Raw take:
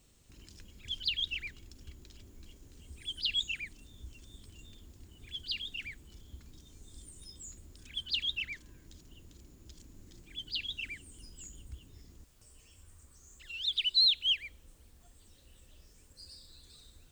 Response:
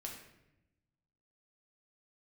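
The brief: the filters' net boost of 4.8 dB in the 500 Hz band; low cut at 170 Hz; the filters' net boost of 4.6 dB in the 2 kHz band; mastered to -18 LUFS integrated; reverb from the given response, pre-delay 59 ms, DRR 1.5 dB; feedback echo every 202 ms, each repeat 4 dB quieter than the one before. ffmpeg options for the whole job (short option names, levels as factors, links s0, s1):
-filter_complex "[0:a]highpass=170,equalizer=f=500:t=o:g=6.5,equalizer=f=2000:t=o:g=6.5,aecho=1:1:202|404|606|808|1010|1212|1414|1616|1818:0.631|0.398|0.25|0.158|0.0994|0.0626|0.0394|0.0249|0.0157,asplit=2[s0][s1];[1:a]atrim=start_sample=2205,adelay=59[s2];[s1][s2]afir=irnorm=-1:irlink=0,volume=1.12[s3];[s0][s3]amix=inputs=2:normalize=0,volume=2.82"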